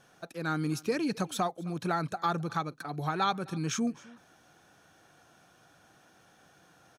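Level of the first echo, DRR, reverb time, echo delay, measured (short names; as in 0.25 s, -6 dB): -23.0 dB, none, none, 0.261 s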